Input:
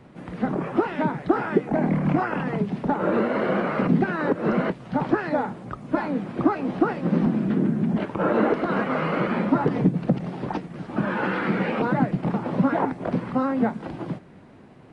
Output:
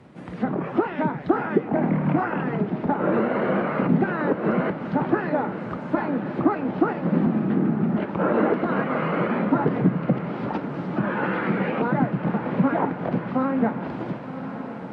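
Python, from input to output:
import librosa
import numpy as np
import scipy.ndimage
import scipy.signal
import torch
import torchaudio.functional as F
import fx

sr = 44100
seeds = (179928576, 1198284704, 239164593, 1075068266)

y = scipy.signal.sosfilt(scipy.signal.butter(2, 62.0, 'highpass', fs=sr, output='sos'), x)
y = fx.echo_diffused(y, sr, ms=1043, feedback_pct=62, wet_db=-11)
y = fx.env_lowpass_down(y, sr, base_hz=2900.0, full_db=-21.5)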